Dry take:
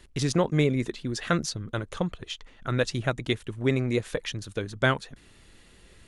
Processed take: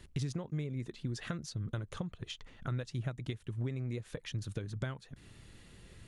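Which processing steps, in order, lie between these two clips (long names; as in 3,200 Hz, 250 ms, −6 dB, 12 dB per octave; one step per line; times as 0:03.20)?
downward compressor 10 to 1, threshold −36 dBFS, peak gain reduction 18.5 dB
parametric band 120 Hz +9.5 dB 1.5 octaves
level −3.5 dB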